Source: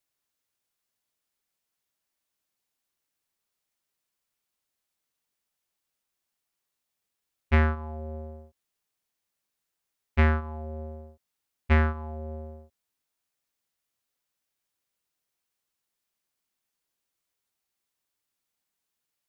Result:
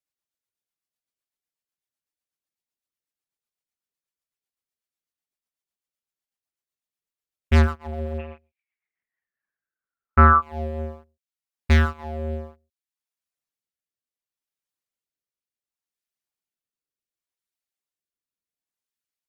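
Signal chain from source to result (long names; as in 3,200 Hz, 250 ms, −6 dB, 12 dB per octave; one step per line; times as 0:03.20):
reverb reduction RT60 0.51 s
rotating-speaker cabinet horn 8 Hz, later 0.7 Hz, at 0:08.74
leveller curve on the samples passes 3
0:08.18–0:10.41: low-pass with resonance 2,700 Hz → 1,200 Hz, resonance Q 14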